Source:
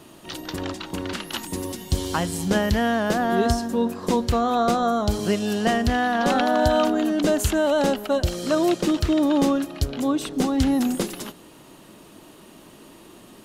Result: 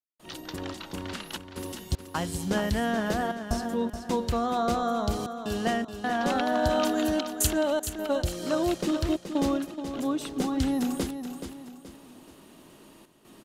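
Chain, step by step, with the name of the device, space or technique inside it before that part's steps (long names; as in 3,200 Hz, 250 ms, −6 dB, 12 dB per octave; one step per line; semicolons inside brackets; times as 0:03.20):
0:06.83–0:07.47: high-shelf EQ 3,000 Hz +11 dB
trance gate with a delay (gate pattern ".xxxxxx.xx" 77 BPM −60 dB; repeating echo 426 ms, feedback 39%, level −9 dB)
level −6 dB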